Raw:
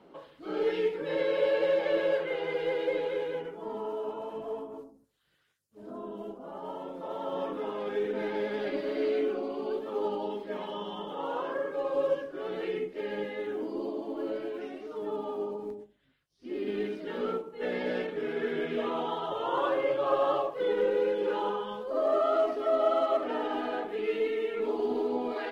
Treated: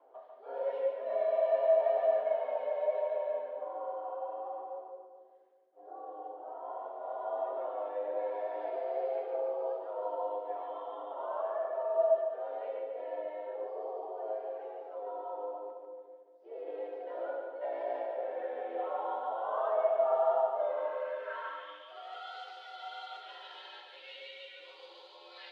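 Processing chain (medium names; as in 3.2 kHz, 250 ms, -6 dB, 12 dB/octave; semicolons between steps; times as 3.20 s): two-band feedback delay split 470 Hz, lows 209 ms, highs 144 ms, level -4.5 dB; band-pass sweep 630 Hz -> 3.8 kHz, 20.59–22.32 s; frequency shift +100 Hz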